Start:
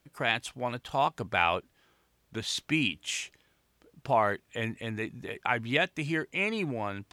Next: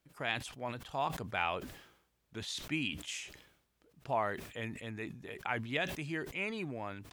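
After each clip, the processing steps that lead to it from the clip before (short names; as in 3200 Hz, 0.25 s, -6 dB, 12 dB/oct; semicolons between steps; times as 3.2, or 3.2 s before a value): sustainer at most 77 dB/s; gain -8 dB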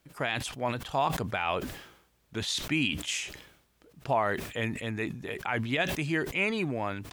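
limiter -25.5 dBFS, peak gain reduction 8 dB; gain +9 dB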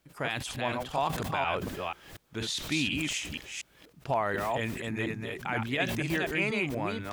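reverse delay 0.241 s, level -3 dB; gain -2 dB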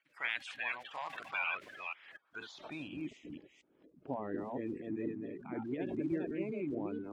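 bin magnitudes rounded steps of 30 dB; band-pass sweep 2100 Hz -> 310 Hz, 2.02–3.14; gain +1.5 dB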